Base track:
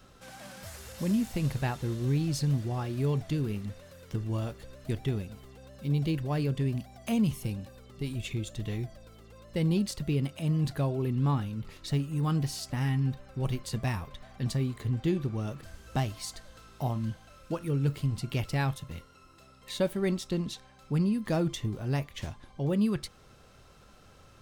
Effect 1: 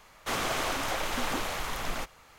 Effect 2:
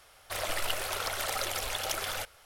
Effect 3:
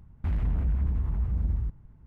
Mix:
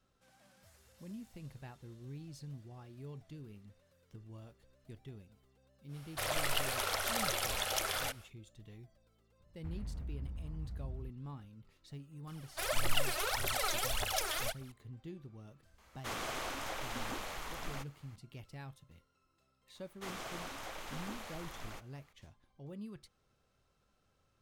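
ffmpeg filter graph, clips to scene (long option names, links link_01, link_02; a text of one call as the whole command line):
ffmpeg -i bed.wav -i cue0.wav -i cue1.wav -i cue2.wav -filter_complex "[2:a]asplit=2[link_01][link_02];[1:a]asplit=2[link_03][link_04];[0:a]volume=-19.5dB[link_05];[link_02]aphaser=in_gain=1:out_gain=1:delay=3.4:decay=0.77:speed=1.7:type=triangular[link_06];[link_01]atrim=end=2.45,asetpts=PTS-STARTPTS,volume=-2dB,afade=type=in:duration=0.1,afade=type=out:start_time=2.35:duration=0.1,adelay=5870[link_07];[3:a]atrim=end=2.06,asetpts=PTS-STARTPTS,volume=-16dB,afade=type=in:duration=0.004:curve=hsin,afade=type=out:start_time=2.056:duration=0.004:curve=hsin,adelay=9400[link_08];[link_06]atrim=end=2.45,asetpts=PTS-STARTPTS,volume=-6dB,afade=type=in:duration=0.004:curve=hsin,afade=type=out:start_time=2.446:duration=0.004:curve=hsin,adelay=12270[link_09];[link_03]atrim=end=2.38,asetpts=PTS-STARTPTS,volume=-9.5dB,afade=type=in:duration=0.004:curve=hsin,afade=type=out:start_time=2.376:duration=0.004:curve=hsin,adelay=15780[link_10];[link_04]atrim=end=2.38,asetpts=PTS-STARTPTS,volume=-14dB,afade=type=in:duration=0.004:curve=hsin,afade=type=out:start_time=2.376:duration=0.004:curve=hsin,adelay=19750[link_11];[link_05][link_07][link_08][link_09][link_10][link_11]amix=inputs=6:normalize=0" out.wav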